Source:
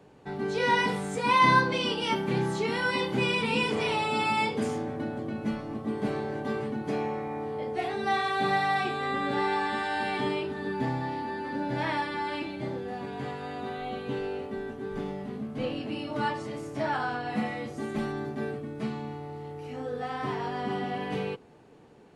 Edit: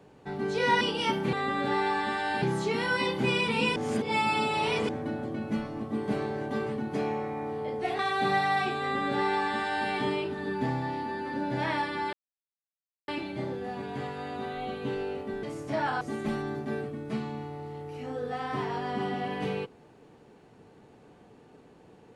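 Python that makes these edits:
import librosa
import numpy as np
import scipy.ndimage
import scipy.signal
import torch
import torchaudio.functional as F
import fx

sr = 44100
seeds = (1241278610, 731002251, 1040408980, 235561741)

y = fx.edit(x, sr, fx.cut(start_s=0.81, length_s=1.03),
    fx.reverse_span(start_s=3.7, length_s=1.13),
    fx.cut(start_s=7.93, length_s=0.25),
    fx.duplicate(start_s=8.99, length_s=1.09, to_s=2.36),
    fx.insert_silence(at_s=12.32, length_s=0.95),
    fx.cut(start_s=14.67, length_s=1.83),
    fx.cut(start_s=17.08, length_s=0.63), tone=tone)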